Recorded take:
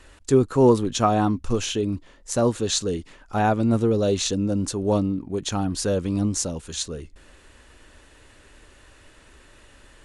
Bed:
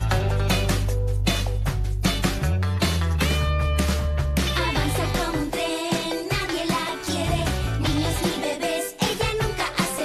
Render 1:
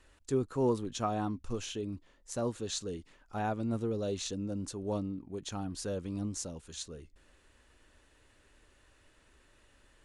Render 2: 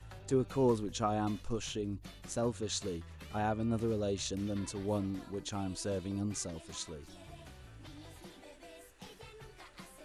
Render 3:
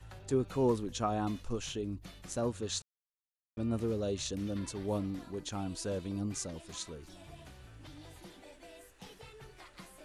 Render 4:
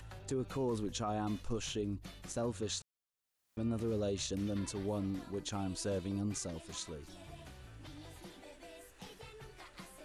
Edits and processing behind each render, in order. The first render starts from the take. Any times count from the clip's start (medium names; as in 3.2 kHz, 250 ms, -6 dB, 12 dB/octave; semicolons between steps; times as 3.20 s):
trim -13 dB
add bed -28.5 dB
2.82–3.57 s: mute
upward compressor, threshold -52 dBFS; peak limiter -28 dBFS, peak gain reduction 8.5 dB